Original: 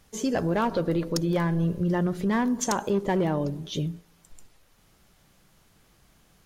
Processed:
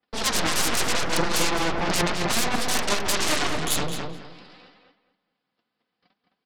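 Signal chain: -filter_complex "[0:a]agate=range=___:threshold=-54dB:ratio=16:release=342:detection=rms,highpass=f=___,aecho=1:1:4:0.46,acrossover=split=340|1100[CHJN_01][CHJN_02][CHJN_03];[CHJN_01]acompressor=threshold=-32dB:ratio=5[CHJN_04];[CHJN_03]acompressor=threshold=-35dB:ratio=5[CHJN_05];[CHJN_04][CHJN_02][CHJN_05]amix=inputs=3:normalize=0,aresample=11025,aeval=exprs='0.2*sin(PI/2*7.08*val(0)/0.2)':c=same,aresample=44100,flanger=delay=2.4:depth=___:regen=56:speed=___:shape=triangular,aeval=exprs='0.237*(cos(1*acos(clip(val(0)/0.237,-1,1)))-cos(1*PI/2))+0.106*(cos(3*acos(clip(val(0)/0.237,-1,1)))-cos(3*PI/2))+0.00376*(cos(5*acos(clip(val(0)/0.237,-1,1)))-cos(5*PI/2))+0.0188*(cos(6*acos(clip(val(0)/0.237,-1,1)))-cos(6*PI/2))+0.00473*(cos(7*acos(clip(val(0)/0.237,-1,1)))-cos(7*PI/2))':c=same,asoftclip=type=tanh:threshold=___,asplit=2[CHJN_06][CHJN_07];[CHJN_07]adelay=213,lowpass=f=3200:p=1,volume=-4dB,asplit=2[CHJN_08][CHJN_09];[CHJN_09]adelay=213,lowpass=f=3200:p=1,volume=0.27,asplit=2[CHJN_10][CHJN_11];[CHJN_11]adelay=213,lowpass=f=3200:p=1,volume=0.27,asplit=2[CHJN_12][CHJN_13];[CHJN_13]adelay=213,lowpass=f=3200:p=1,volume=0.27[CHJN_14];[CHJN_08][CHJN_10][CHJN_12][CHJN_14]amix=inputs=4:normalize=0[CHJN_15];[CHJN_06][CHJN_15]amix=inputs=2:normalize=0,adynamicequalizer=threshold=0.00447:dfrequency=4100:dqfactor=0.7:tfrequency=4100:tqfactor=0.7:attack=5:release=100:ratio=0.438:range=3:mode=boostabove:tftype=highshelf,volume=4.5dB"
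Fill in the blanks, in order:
-31dB, 230, 6.7, 0.62, -15dB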